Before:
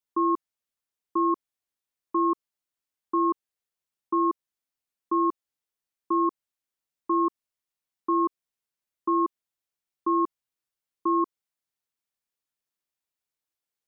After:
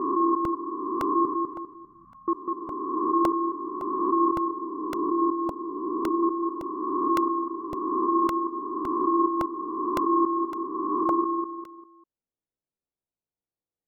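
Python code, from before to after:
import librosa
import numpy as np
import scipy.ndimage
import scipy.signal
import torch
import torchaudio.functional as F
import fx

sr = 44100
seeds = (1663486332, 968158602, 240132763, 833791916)

y = fx.spec_swells(x, sr, rise_s=2.47)
y = fx.cheby2_bandstop(y, sr, low_hz=330.0, high_hz=730.0, order=4, stop_db=60, at=(1.25, 2.28))
y = fx.env_lowpass(y, sr, base_hz=550.0, full_db=-19.5)
y = fx.lowpass(y, sr, hz=fx.line((4.28, 1100.0), (6.21, 1000.0)), slope=24, at=(4.28, 6.21), fade=0.02)
y = fx.echo_feedback(y, sr, ms=199, feedback_pct=35, wet_db=-4.0)
y = fx.buffer_crackle(y, sr, first_s=0.45, period_s=0.56, block=64, kind='repeat')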